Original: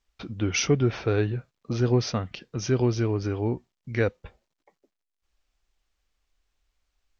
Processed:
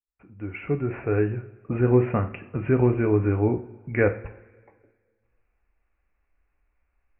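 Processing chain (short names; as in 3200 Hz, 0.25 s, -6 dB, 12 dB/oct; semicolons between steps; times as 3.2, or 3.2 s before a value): opening faded in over 1.99 s; steep low-pass 2600 Hz 96 dB/oct; two-slope reverb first 0.43 s, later 1.8 s, from -18 dB, DRR 6.5 dB; gain +3.5 dB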